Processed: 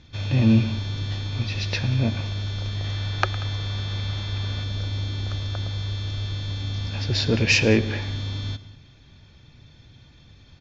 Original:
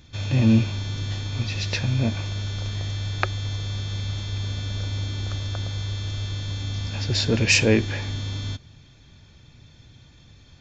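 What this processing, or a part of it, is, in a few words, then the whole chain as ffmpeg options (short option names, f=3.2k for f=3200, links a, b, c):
synthesiser wavefolder: -filter_complex "[0:a]aeval=exprs='0.501*(abs(mod(val(0)/0.501+3,4)-2)-1)':c=same,lowpass=f=6.3k:w=0.5412,lowpass=f=6.3k:w=1.3066,lowpass=6.8k,asettb=1/sr,asplit=3[a][b][c];[a]atrim=end=2.844[d];[b]atrim=start=2.84:end=4.64,asetpts=PTS-STARTPTS,afade=t=in:d=0.004:c=qsin,afade=t=out:st=1.796:d=0.004:c=qsin,equalizer=f=1.3k:w=0.51:g=4.5[e];[c]atrim=start=4.636[f];[d][e]acrossfade=d=0.004:c1=hsin:c2=qsin[g];[g][f]acrossfade=d=0.004:c1=qsin:c2=hsin,aecho=1:1:109|186:0.126|0.106"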